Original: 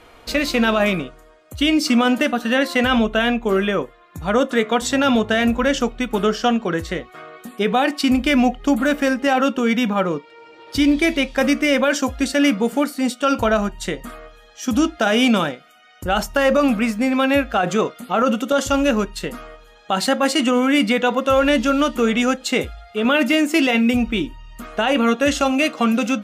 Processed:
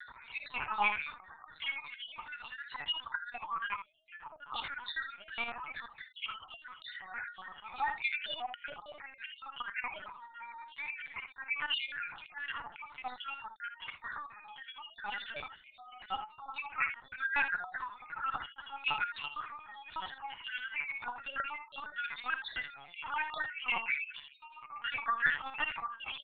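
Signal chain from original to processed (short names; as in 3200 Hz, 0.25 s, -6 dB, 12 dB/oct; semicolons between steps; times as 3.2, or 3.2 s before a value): random spectral dropouts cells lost 69%; treble ducked by the level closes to 2200 Hz, closed at -16 dBFS; steep high-pass 820 Hz 72 dB/oct; tilt -4.5 dB/oct; comb 6.9 ms, depth 97%; compressor 2:1, threshold -31 dBFS, peak gain reduction 9 dB; auto swell 0.208 s; upward compressor, threshold -47 dBFS; loudest bins only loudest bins 64; early reflections 44 ms -12.5 dB, 71 ms -9 dB; LPC vocoder at 8 kHz pitch kept; gain +3.5 dB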